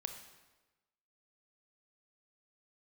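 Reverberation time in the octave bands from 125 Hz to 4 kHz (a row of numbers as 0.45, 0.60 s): 1.2, 1.2, 1.2, 1.1, 1.1, 0.95 s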